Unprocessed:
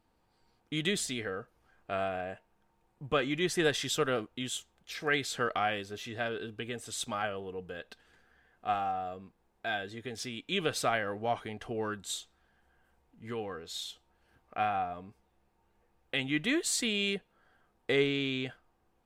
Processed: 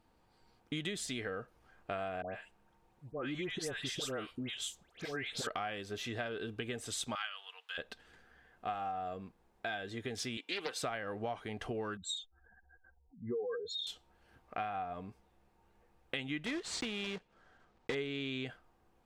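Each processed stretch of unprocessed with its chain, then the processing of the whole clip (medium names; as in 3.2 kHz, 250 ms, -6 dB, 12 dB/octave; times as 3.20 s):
2.22–5.47 s: slow attack 145 ms + compression 1.5:1, threshold -40 dBFS + phase dispersion highs, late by 131 ms, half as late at 1.6 kHz
7.15–7.78 s: high-pass 1.1 kHz 24 dB/octave + peaking EQ 3.4 kHz +11 dB 0.95 oct
10.37–10.83 s: high-pass 390 Hz + comb of notches 640 Hz + loudspeaker Doppler distortion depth 0.27 ms
11.97–13.87 s: spectral contrast enhancement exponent 2.9 + high-order bell 930 Hz +9 dB 2.9 oct
16.46–17.96 s: block-companded coder 3-bit + distance through air 97 m
whole clip: treble shelf 10 kHz -5 dB; compression 6:1, threshold -38 dBFS; trim +2.5 dB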